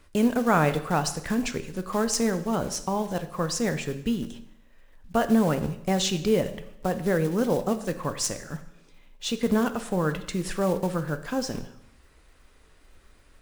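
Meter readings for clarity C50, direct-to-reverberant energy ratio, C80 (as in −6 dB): 13.0 dB, 9.0 dB, 15.0 dB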